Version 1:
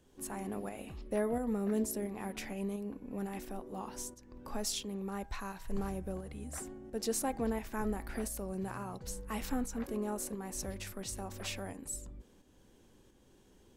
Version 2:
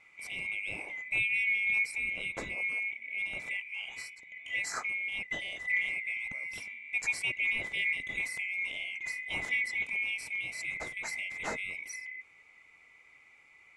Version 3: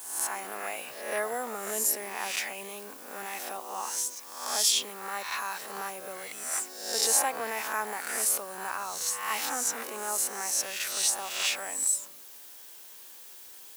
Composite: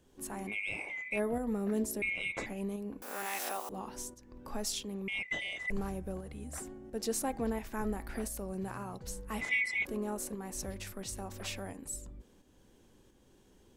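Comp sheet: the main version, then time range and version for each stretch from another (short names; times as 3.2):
1
0.51–1.15 from 2, crossfade 0.10 s
2.02–2.46 from 2
3.02–3.69 from 3
5.08–5.7 from 2
9.41–9.85 from 2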